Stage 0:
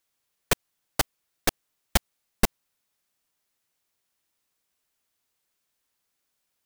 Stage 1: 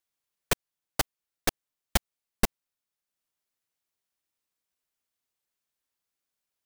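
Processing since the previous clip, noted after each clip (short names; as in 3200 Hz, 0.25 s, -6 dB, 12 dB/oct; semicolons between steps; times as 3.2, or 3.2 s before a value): transient shaper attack +6 dB, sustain -3 dB; gain -8.5 dB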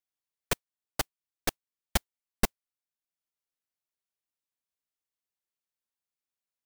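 modulation noise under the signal 31 dB; upward expander 1.5:1, over -34 dBFS; gain -1.5 dB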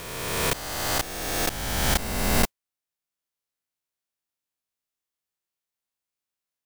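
spectral swells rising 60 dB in 1.83 s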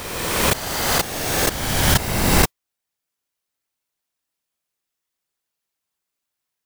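whisperiser; gain +6.5 dB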